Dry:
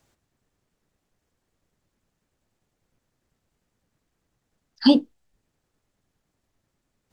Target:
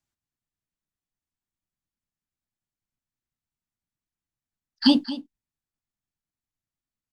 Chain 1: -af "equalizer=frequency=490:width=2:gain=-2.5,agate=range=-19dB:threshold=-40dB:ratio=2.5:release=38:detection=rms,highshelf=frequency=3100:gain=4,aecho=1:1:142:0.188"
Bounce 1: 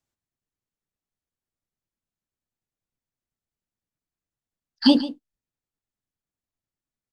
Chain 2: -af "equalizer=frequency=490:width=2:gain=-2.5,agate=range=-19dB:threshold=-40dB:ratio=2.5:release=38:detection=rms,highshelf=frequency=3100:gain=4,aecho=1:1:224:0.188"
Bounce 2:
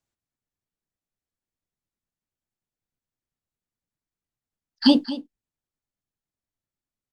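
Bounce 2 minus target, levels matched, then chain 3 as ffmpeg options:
500 Hz band +4.5 dB
-af "equalizer=frequency=490:width=2:gain=-11.5,agate=range=-19dB:threshold=-40dB:ratio=2.5:release=38:detection=rms,highshelf=frequency=3100:gain=4,aecho=1:1:224:0.188"

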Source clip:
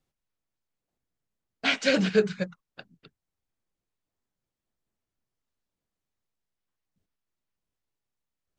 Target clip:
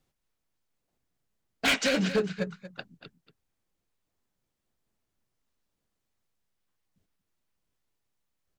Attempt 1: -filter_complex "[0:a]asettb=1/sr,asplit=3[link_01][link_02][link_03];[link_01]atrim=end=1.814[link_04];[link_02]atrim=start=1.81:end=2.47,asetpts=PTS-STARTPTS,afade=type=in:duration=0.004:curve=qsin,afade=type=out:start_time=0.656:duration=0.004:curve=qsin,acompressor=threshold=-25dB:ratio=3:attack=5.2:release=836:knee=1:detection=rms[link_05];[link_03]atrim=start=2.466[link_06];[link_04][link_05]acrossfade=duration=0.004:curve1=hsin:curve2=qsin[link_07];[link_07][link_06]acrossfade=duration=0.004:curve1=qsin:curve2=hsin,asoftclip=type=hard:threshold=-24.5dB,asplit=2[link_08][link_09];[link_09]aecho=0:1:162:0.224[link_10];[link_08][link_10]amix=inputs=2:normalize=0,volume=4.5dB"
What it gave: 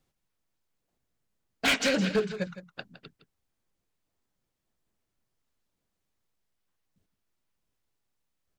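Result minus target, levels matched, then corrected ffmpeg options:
echo 72 ms early
-filter_complex "[0:a]asettb=1/sr,asplit=3[link_01][link_02][link_03];[link_01]atrim=end=1.814[link_04];[link_02]atrim=start=1.81:end=2.47,asetpts=PTS-STARTPTS,afade=type=in:duration=0.004:curve=qsin,afade=type=out:start_time=0.656:duration=0.004:curve=qsin,acompressor=threshold=-25dB:ratio=3:attack=5.2:release=836:knee=1:detection=rms[link_05];[link_03]atrim=start=2.466[link_06];[link_04][link_05]acrossfade=duration=0.004:curve1=hsin:curve2=qsin[link_07];[link_07][link_06]acrossfade=duration=0.004:curve1=qsin:curve2=hsin,asoftclip=type=hard:threshold=-24.5dB,asplit=2[link_08][link_09];[link_09]aecho=0:1:234:0.224[link_10];[link_08][link_10]amix=inputs=2:normalize=0,volume=4.5dB"

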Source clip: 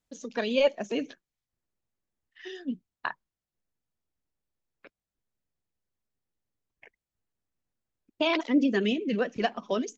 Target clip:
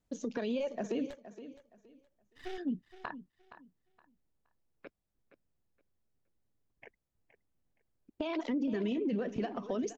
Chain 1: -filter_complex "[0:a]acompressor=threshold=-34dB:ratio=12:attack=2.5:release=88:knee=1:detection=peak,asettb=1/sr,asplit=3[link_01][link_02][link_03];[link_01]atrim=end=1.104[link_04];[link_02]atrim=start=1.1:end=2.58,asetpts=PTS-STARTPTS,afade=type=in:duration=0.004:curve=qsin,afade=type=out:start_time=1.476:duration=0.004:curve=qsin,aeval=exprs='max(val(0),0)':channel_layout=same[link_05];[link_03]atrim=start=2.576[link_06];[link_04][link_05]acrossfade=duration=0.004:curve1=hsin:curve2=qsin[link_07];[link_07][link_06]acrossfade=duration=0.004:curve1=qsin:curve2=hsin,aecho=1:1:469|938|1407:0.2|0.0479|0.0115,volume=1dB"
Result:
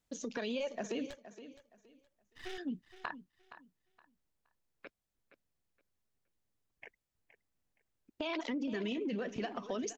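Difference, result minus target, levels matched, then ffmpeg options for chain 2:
1,000 Hz band +2.5 dB
-filter_complex "[0:a]acompressor=threshold=-34dB:ratio=12:attack=2.5:release=88:knee=1:detection=peak,tiltshelf=frequency=980:gain=5,asettb=1/sr,asplit=3[link_01][link_02][link_03];[link_01]atrim=end=1.104[link_04];[link_02]atrim=start=1.1:end=2.58,asetpts=PTS-STARTPTS,afade=type=in:duration=0.004:curve=qsin,afade=type=out:start_time=1.476:duration=0.004:curve=qsin,aeval=exprs='max(val(0),0)':channel_layout=same[link_05];[link_03]atrim=start=2.576[link_06];[link_04][link_05]acrossfade=duration=0.004:curve1=hsin:curve2=qsin[link_07];[link_07][link_06]acrossfade=duration=0.004:curve1=qsin:curve2=hsin,aecho=1:1:469|938|1407:0.2|0.0479|0.0115,volume=1dB"

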